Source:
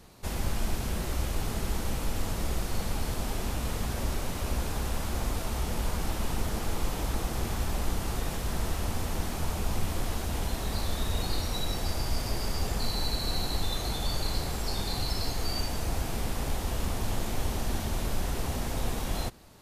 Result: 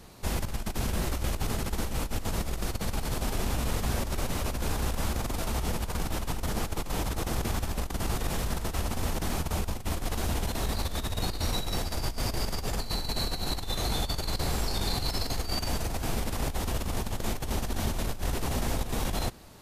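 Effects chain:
compressor whose output falls as the input rises −30 dBFS, ratio −0.5
level +1.5 dB

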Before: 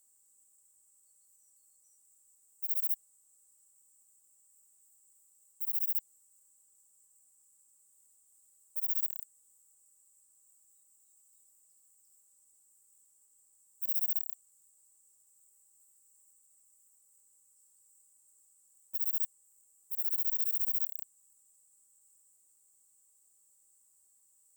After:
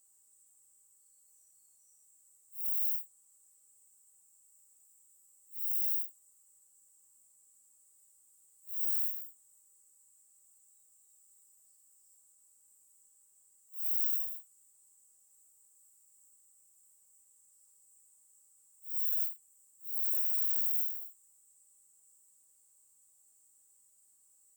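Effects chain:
random phases in long frames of 200 ms
level +1 dB

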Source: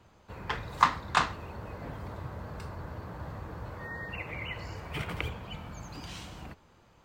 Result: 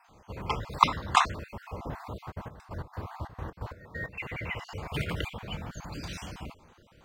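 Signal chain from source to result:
time-frequency cells dropped at random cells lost 34%
0:02.30–0:04.32: gate pattern "..x.xxx.x.x" 133 BPM −12 dB
level +4.5 dB

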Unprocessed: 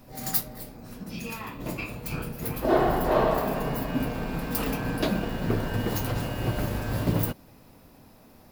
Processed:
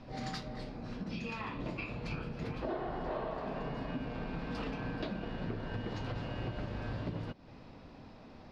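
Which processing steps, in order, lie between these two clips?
low-pass filter 4,700 Hz 24 dB per octave
downward compressor 6 to 1, threshold −37 dBFS, peak gain reduction 19 dB
level +1 dB

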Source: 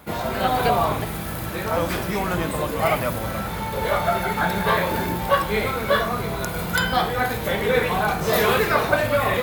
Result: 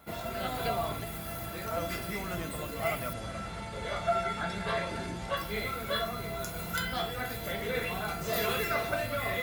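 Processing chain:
dynamic equaliser 800 Hz, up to −6 dB, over −34 dBFS, Q 1.1
tuned comb filter 680 Hz, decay 0.26 s, mix 90%
0:03.13–0:05.37: Butterworth low-pass 9,400 Hz 36 dB per octave
level +7 dB

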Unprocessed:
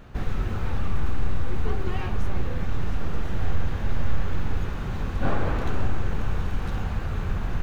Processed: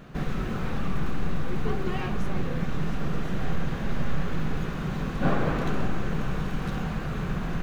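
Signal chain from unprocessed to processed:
low shelf with overshoot 120 Hz −6.5 dB, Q 3
notch filter 870 Hz, Q 13
level +1.5 dB

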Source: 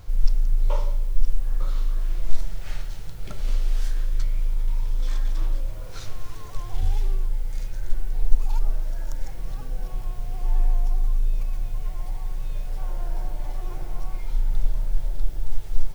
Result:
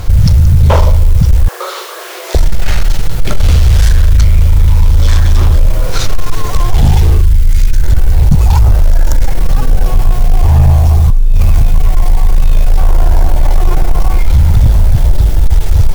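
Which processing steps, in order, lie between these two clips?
0:01.48–0:02.35: Chebyshev high-pass filter 370 Hz, order 6
0:07.21–0:07.83: parametric band 680 Hz −14 dB 1.2 octaves
0:11.10–0:11.62: compressor whose output falls as the input rises −22 dBFS, ratio −0.5
sine wavefolder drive 20 dB, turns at −1.5 dBFS

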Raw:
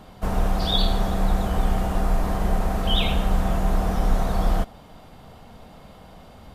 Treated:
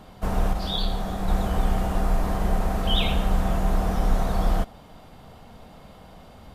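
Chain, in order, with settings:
0:00.53–0:01.28: micro pitch shift up and down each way 49 cents
level −1 dB

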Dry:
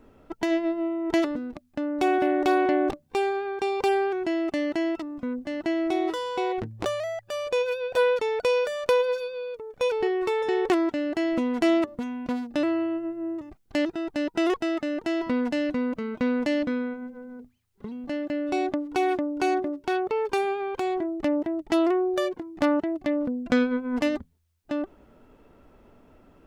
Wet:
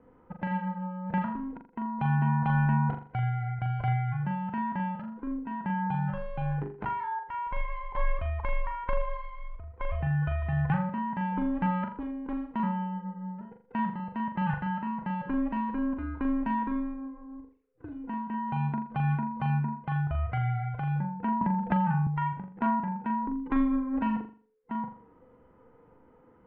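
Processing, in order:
frequency inversion band by band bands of 500 Hz
low-pass filter 2,100 Hz 24 dB per octave
flutter between parallel walls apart 7.1 metres, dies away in 0.41 s
0:21.41–0:22.07: multiband upward and downward compressor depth 100%
level −5.5 dB

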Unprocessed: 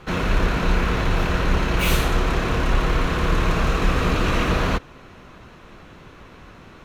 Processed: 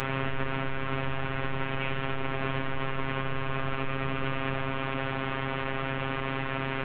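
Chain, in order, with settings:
linear delta modulator 16 kbit/s, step −18.5 dBFS
brickwall limiter −15 dBFS, peak gain reduction 7.5 dB
phases set to zero 134 Hz
level −4 dB

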